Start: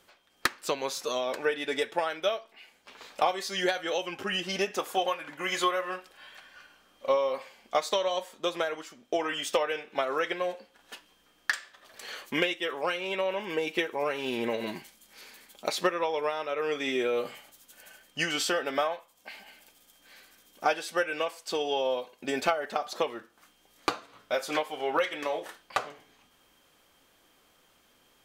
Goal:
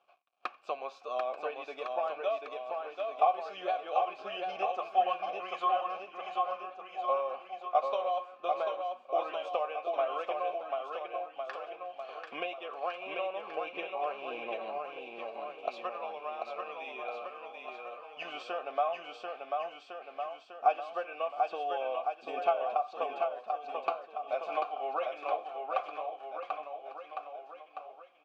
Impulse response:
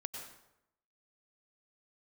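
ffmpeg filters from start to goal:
-filter_complex "[0:a]asettb=1/sr,asplit=3[a][b][c];[a]atrim=end=15.684[d];[b]atrim=start=15.68:end=18.25,asetpts=PTS-STARTPTS,afade=t=in:d=0.004:c=qsin,afade=t=out:st=2.566:d=0.004:c=qsin,equalizer=f=350:t=o:w=2.4:g=-8[e];[c]atrim=start=18.246[f];[d][e]acrossfade=d=0.004:c1=hsin:c2=qsin[g];[g][f]acrossfade=d=0.004:c1=qsin:c2=hsin,aecho=1:1:740|1406|2005|2545|3030:0.631|0.398|0.251|0.158|0.1,acrusher=bits=9:mix=0:aa=0.000001,asplit=3[h][i][j];[h]bandpass=f=730:t=q:w=8,volume=0dB[k];[i]bandpass=f=1.09k:t=q:w=8,volume=-6dB[l];[j]bandpass=f=2.44k:t=q:w=8,volume=-9dB[m];[k][l][m]amix=inputs=3:normalize=0,equalizer=f=11k:t=o:w=1.2:g=-14.5[n];[1:a]atrim=start_sample=2205,atrim=end_sample=3969[o];[n][o]afir=irnorm=-1:irlink=0,volume=7.5dB"

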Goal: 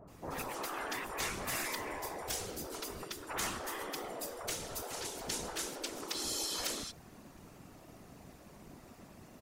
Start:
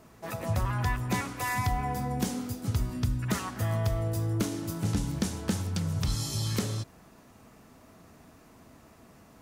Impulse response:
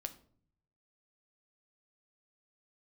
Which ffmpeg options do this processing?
-filter_complex "[0:a]afftfilt=real='hypot(re,im)*cos(2*PI*random(0))':imag='hypot(re,im)*sin(2*PI*random(1))':win_size=512:overlap=0.75,acrossover=split=1300[a][b];[b]adelay=80[c];[a][c]amix=inputs=2:normalize=0,afftfilt=real='re*lt(hypot(re,im),0.0316)':imag='im*lt(hypot(re,im),0.0316)':win_size=1024:overlap=0.75,volume=6.5dB"

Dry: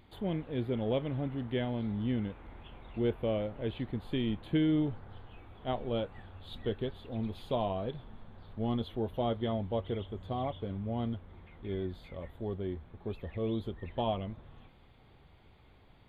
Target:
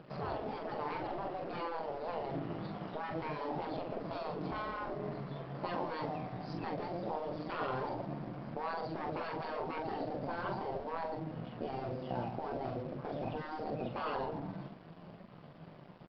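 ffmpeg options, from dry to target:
-filter_complex "[0:a]volume=31dB,asoftclip=hard,volume=-31dB,highpass=f=98:w=0.5412,highpass=f=98:w=1.3066,asplit=2[a][b];[b]adelay=123,lowpass=f=1.6k:p=1,volume=-13.5dB,asplit=2[c][d];[d]adelay=123,lowpass=f=1.6k:p=1,volume=0.43,asplit=2[e][f];[f]adelay=123,lowpass=f=1.6k:p=1,volume=0.43,asplit=2[g][h];[h]adelay=123,lowpass=f=1.6k:p=1,volume=0.43[i];[a][c][e][g][i]amix=inputs=5:normalize=0,tremolo=f=120:d=0.519,equalizer=f=125:t=o:w=1:g=11,equalizer=f=250:t=o:w=1:g=3,equalizer=f=500:t=o:w=1:g=10,equalizer=f=4k:t=o:w=1:g=-5,asplit=2[j][k];[k]acompressor=threshold=-39dB:ratio=6,volume=0dB[l];[j][l]amix=inputs=2:normalize=0,asetrate=60591,aresample=44100,atempo=0.727827,acontrast=34,bass=f=250:g=3,treble=f=4k:g=-6,asplit=2[m][n];[n]adelay=43,volume=-6dB[o];[m][o]amix=inputs=2:normalize=0,aresample=11025,aeval=exprs='sgn(val(0))*max(abs(val(0))-0.00355,0)':c=same,aresample=44100,afftfilt=real='re*lt(hypot(re,im),0.251)':imag='im*lt(hypot(re,im),0.251)':win_size=1024:overlap=0.75,volume=-5.5dB"

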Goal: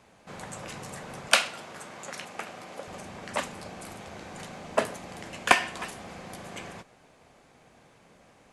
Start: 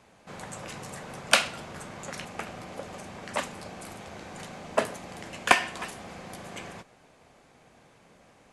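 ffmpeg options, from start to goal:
-filter_complex "[0:a]asettb=1/sr,asplit=3[a][b][c];[a]atrim=end=1.284[d];[b]atrim=start=1.28:end=2.88,asetpts=PTS-STARTPTS,afade=t=in:d=0.004:c=qsin,afade=t=out:st=1.596:d=0.004:c=qsin,highpass=f=350:p=1[e];[c]atrim=start=2.876[f];[d][e]acrossfade=d=0.004:c1=hsin:c2=qsin[g];[g][f]acrossfade=d=0.004:c1=qsin:c2=hsin"

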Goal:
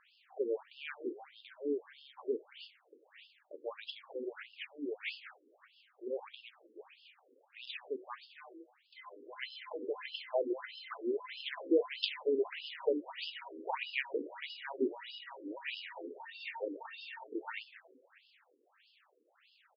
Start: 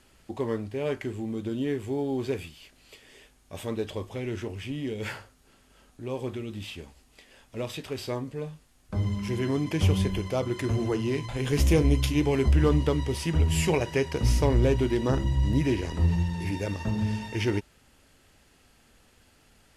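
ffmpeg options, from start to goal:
-filter_complex "[0:a]lowshelf=f=500:g=-7.5,asplit=6[a][b][c][d][e][f];[b]adelay=186,afreqshift=-120,volume=-14dB[g];[c]adelay=372,afreqshift=-240,volume=-19.5dB[h];[d]adelay=558,afreqshift=-360,volume=-25dB[i];[e]adelay=744,afreqshift=-480,volume=-30.5dB[j];[f]adelay=930,afreqshift=-600,volume=-36.1dB[k];[a][g][h][i][j][k]amix=inputs=6:normalize=0,afftfilt=real='re*between(b*sr/1024,360*pow(3800/360,0.5+0.5*sin(2*PI*1.6*pts/sr))/1.41,360*pow(3800/360,0.5+0.5*sin(2*PI*1.6*pts/sr))*1.41)':imag='im*between(b*sr/1024,360*pow(3800/360,0.5+0.5*sin(2*PI*1.6*pts/sr))/1.41,360*pow(3800/360,0.5+0.5*sin(2*PI*1.6*pts/sr))*1.41)':win_size=1024:overlap=0.75,volume=1dB"

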